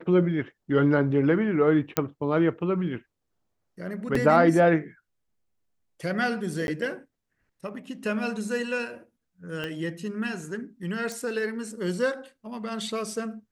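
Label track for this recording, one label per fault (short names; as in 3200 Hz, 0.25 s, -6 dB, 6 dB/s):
1.970000	1.970000	pop -7 dBFS
4.150000	4.150000	gap 3.7 ms
6.670000	6.680000	gap 11 ms
9.640000	9.640000	pop -19 dBFS
11.120000	11.120000	pop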